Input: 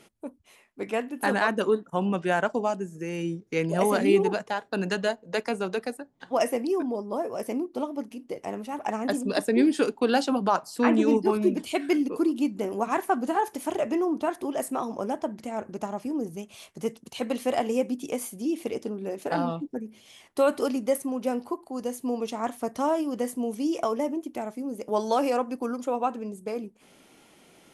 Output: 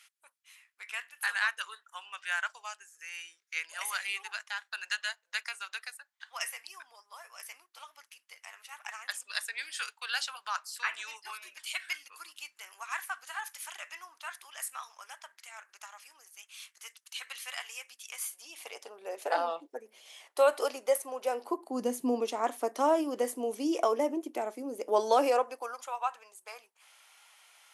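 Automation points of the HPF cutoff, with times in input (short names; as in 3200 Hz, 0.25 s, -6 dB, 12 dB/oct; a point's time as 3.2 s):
HPF 24 dB/oct
18.05 s 1400 Hz
19.2 s 510 Hz
21.3 s 510 Hz
21.98 s 140 Hz
22.28 s 320 Hz
25.21 s 320 Hz
25.91 s 910 Hz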